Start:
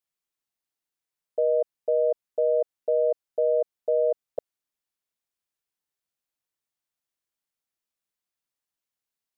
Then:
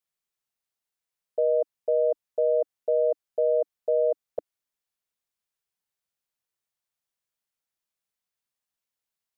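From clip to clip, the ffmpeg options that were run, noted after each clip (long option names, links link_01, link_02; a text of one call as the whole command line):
ffmpeg -i in.wav -af "equalizer=frequency=300:width=7.3:gain=-11.5" out.wav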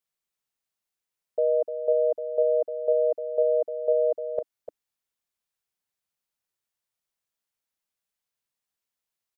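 ffmpeg -i in.wav -af "aecho=1:1:300:0.335" out.wav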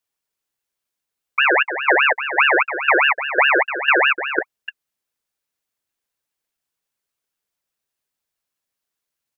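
ffmpeg -i in.wav -af "equalizer=frequency=550:width_type=o:width=0.24:gain=9.5,aeval=exprs='val(0)*sin(2*PI*1600*n/s+1600*0.4/4.9*sin(2*PI*4.9*n/s))':channel_layout=same,volume=7dB" out.wav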